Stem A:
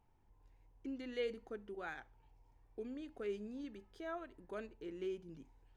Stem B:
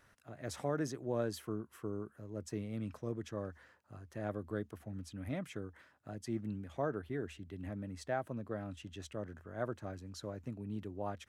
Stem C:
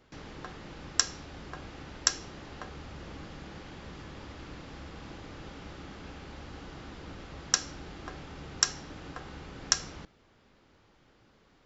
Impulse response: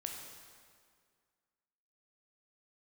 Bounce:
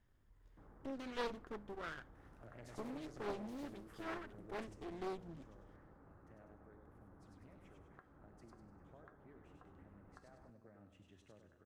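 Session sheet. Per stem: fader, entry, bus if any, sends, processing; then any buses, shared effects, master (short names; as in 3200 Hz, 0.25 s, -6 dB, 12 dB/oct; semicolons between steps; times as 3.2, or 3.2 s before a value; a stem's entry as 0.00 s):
+0.5 dB, 0.00 s, no bus, no send, no echo send, minimum comb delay 0.6 ms
4.56 s -6.5 dB -> 4.79 s -18 dB, 2.15 s, bus A, send -5 dB, echo send -6 dB, compressor 5:1, threshold -43 dBFS, peak gain reduction 12 dB
-16.0 dB, 0.45 s, bus A, no send, no echo send, inverse Chebyshev low-pass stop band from 4500 Hz, stop band 60 dB
bus A: 0.0 dB, resonant high shelf 3100 Hz -11 dB, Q 1.5; compressor, threshold -58 dBFS, peak gain reduction 12 dB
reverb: on, RT60 2.0 s, pre-delay 13 ms
echo: feedback echo 99 ms, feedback 41%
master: Doppler distortion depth 0.74 ms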